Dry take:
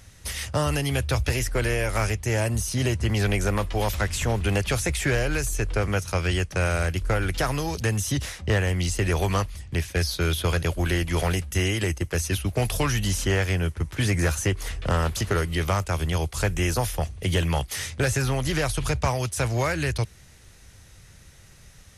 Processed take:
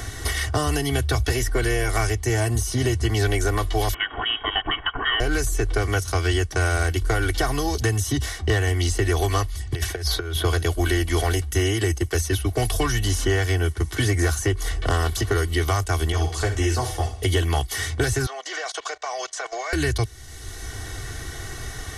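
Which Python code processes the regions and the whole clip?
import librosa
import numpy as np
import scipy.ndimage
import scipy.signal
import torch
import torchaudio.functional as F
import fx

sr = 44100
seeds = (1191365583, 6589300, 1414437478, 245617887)

y = fx.chain(x, sr, fx.brickwall_highpass(low_hz=220.0),
    fx.freq_invert(carrier_hz=3500), at=(3.94, 5.2))
y = fx.chain(y, sr, fx.over_compress(threshold_db=-29.0, ratio=-0.5),
    fx.peak_eq(hz=230.0, db=-10.5, octaves=0.51), at=(9.71, 10.36))
y = fx.chain(y, sr, fx.lowpass(hz=8900.0, slope=12),
    fx.room_flutter(wall_m=10.0, rt60_s=0.38),
    fx.ensemble(), at=(16.12, 17.23))
y = fx.chain(y, sr, fx.ellip_bandpass(low_hz=550.0, high_hz=6900.0, order=3, stop_db=60),
    fx.level_steps(step_db=19), at=(18.26, 19.73))
y = fx.notch(y, sr, hz=2500.0, q=5.8)
y = y + 0.88 * np.pad(y, (int(2.7 * sr / 1000.0), 0))[:len(y)]
y = fx.band_squash(y, sr, depth_pct=70)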